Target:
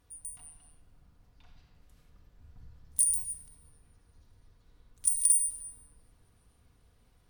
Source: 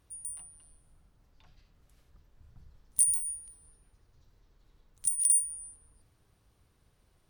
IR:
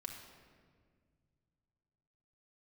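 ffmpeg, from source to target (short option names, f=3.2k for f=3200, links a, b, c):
-filter_complex "[0:a]asettb=1/sr,asplit=3[a][b][c];[a]atrim=end=5.054[d];[b]atrim=start=5.05:end=5.51,asetpts=PTS-STARTPTS,afade=t=in:d=0.004:c=qsin,afade=t=out:st=0.456:d=0.004:c=qsin,aecho=1:1:3.3:0.68,atrim=end_sample=20286[e];[c]atrim=start=5.506[f];[d][e]acrossfade=d=0.004:c1=hsin:c2=qsin[g];[g][f]acrossfade=d=0.004:c1=qsin:c2=hsin[h];[1:a]atrim=start_sample=2205,asetrate=43218,aresample=44100[i];[h][i]afir=irnorm=-1:irlink=0,volume=4dB"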